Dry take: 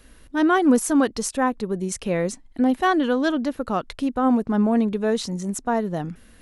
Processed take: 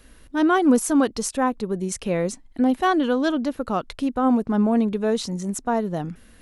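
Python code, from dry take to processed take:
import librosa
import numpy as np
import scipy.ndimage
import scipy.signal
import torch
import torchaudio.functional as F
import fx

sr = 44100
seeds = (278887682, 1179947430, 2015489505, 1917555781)

y = fx.dynamic_eq(x, sr, hz=1800.0, q=4.2, threshold_db=-44.0, ratio=4.0, max_db=-4)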